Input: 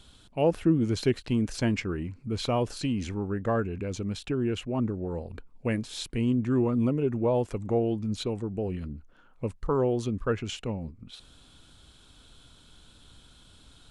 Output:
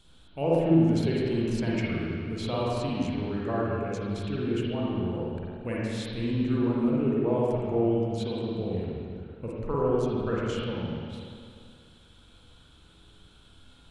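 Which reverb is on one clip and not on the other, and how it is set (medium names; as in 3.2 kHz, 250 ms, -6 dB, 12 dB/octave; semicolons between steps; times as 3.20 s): spring tank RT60 2.2 s, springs 43/49/55 ms, chirp 35 ms, DRR -6 dB; trim -6.5 dB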